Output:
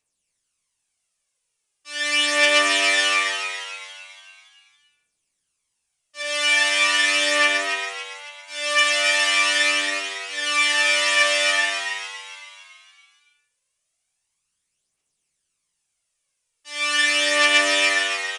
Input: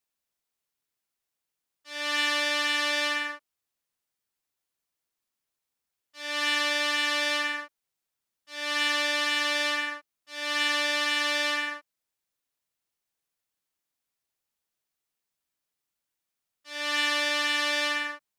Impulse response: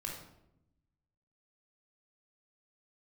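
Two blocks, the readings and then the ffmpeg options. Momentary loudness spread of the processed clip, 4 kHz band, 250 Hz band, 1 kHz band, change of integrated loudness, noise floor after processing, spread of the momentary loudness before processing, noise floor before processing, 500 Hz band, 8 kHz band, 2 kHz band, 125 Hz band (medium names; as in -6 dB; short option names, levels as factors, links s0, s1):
17 LU, +7.5 dB, +2.5 dB, +6.0 dB, +8.0 dB, -77 dBFS, 11 LU, under -85 dBFS, +8.5 dB, +12.0 dB, +8.5 dB, no reading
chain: -filter_complex "[0:a]aexciter=amount=1:drive=9:freq=2200,aphaser=in_gain=1:out_gain=1:delay=3.5:decay=0.59:speed=0.2:type=triangular,asplit=7[s0][s1][s2][s3][s4][s5][s6];[s1]adelay=280,afreqshift=96,volume=0.447[s7];[s2]adelay=560,afreqshift=192,volume=0.209[s8];[s3]adelay=840,afreqshift=288,volume=0.0989[s9];[s4]adelay=1120,afreqshift=384,volume=0.0462[s10];[s5]adelay=1400,afreqshift=480,volume=0.0219[s11];[s6]adelay=1680,afreqshift=576,volume=0.0102[s12];[s0][s7][s8][s9][s10][s11][s12]amix=inputs=7:normalize=0,asplit=2[s13][s14];[1:a]atrim=start_sample=2205,afade=t=out:st=0.27:d=0.01,atrim=end_sample=12348[s15];[s14][s15]afir=irnorm=-1:irlink=0,volume=0.531[s16];[s13][s16]amix=inputs=2:normalize=0,aresample=22050,aresample=44100"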